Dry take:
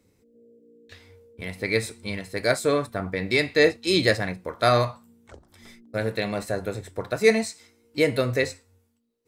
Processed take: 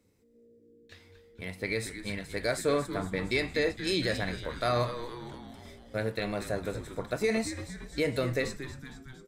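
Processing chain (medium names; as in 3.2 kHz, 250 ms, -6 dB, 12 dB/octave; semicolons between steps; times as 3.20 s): peak limiter -13 dBFS, peak gain reduction 9 dB; frequency-shifting echo 230 ms, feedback 62%, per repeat -130 Hz, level -11 dB; trim -5 dB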